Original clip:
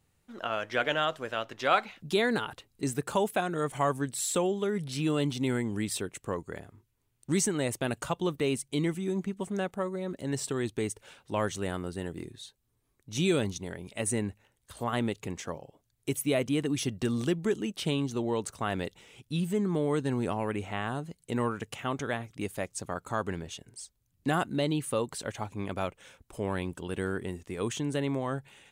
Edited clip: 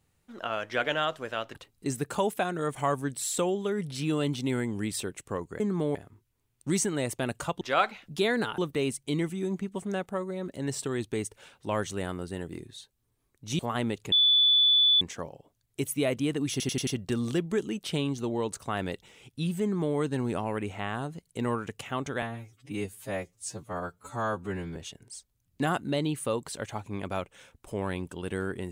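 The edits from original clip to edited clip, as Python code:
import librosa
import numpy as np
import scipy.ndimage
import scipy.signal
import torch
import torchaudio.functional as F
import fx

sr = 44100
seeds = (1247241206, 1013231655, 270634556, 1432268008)

y = fx.edit(x, sr, fx.move(start_s=1.55, length_s=0.97, to_s=8.23),
    fx.cut(start_s=13.24, length_s=1.53),
    fx.insert_tone(at_s=15.3, length_s=0.89, hz=3470.0, db=-18.0),
    fx.stutter(start_s=16.8, slice_s=0.09, count=5),
    fx.duplicate(start_s=19.55, length_s=0.35, to_s=6.57),
    fx.stretch_span(start_s=22.15, length_s=1.27, factor=2.0), tone=tone)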